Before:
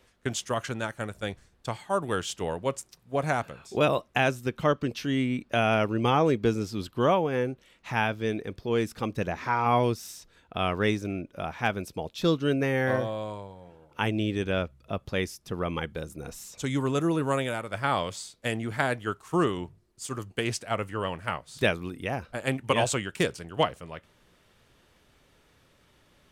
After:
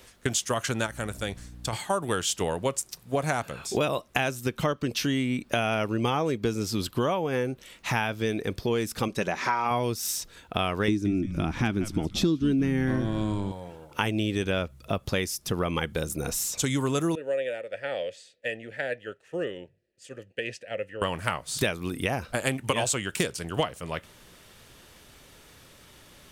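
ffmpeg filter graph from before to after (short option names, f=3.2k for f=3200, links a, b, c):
-filter_complex "[0:a]asettb=1/sr,asplit=3[a][b][c];[a]atrim=end=0.864[d];[b]atrim=start=0.86:end=1.73,asetpts=PTS-STARTPTS,afade=t=in:d=0.004:c=qsin,afade=t=out:st=0.866:d=0.004:c=qsin,acompressor=threshold=-40dB:ratio=2:attack=3.2:release=140:knee=1:detection=peak,aeval=exprs='val(0)+0.00282*(sin(2*PI*60*n/s)+sin(2*PI*2*60*n/s)/2+sin(2*PI*3*60*n/s)/3+sin(2*PI*4*60*n/s)/4+sin(2*PI*5*60*n/s)/5)':c=same[e];[c]atrim=start=1.726[f];[d][e]acrossfade=d=0.004:c1=hsin:c2=qsin[g];[g][f]acrossfade=d=0.004:c1=qsin:c2=hsin,asettb=1/sr,asplit=3[h][i][j];[h]atrim=end=9.084[k];[i]atrim=start=9.08:end=9.71,asetpts=PTS-STARTPTS,afade=t=in:d=0.004:c=qsin,afade=t=out:st=0.626:d=0.004:c=qsin,lowpass=10k,equalizer=f=61:t=o:w=2.8:g=-11.5,aecho=1:1:5.2:0.31,atrim=end_sample=27783[l];[j]atrim=start=9.706[m];[k][l]acrossfade=d=0.004:c1=hsin:c2=qsin[n];[n][m]acrossfade=d=0.004:c1=qsin:c2=hsin,asettb=1/sr,asplit=3[o][p][q];[o]atrim=end=10.884[r];[p]atrim=start=10.88:end=13.52,asetpts=PTS-STARTPTS,afade=t=in:d=0.004:c=qsin,afade=t=out:st=2.636:d=0.004:c=qsin,lowpass=9.8k,lowshelf=f=410:t=q:w=3:g=8,asplit=4[s][t][u][v];[t]adelay=173,afreqshift=-110,volume=-15.5dB[w];[u]adelay=346,afreqshift=-220,volume=-23.7dB[x];[v]adelay=519,afreqshift=-330,volume=-31.9dB[y];[s][w][x][y]amix=inputs=4:normalize=0,atrim=end_sample=116424[z];[q]atrim=start=13.516[aa];[r][z]acrossfade=d=0.004:c1=hsin:c2=qsin[ab];[ab][aa]acrossfade=d=0.004:c1=qsin:c2=hsin,asettb=1/sr,asplit=3[ac][ad][ae];[ac]atrim=end=17.154[af];[ad]atrim=start=17.15:end=21.02,asetpts=PTS-STARTPTS,afade=t=in:d=0.004:c=qsin,afade=t=out:st=3.866:d=0.004:c=qsin,asplit=3[ag][ah][ai];[ag]bandpass=f=530:t=q:w=8,volume=0dB[aj];[ah]bandpass=f=1.84k:t=q:w=8,volume=-6dB[ak];[ai]bandpass=f=2.48k:t=q:w=8,volume=-9dB[al];[aj][ak][al]amix=inputs=3:normalize=0,asubboost=boost=4:cutoff=220[am];[ae]atrim=start=21.016[an];[af][am]acrossfade=d=0.004:c1=hsin:c2=qsin[ao];[ao][an]acrossfade=d=0.004:c1=qsin:c2=hsin,highshelf=f=4.6k:g=9.5,acompressor=threshold=-32dB:ratio=5,volume=8dB"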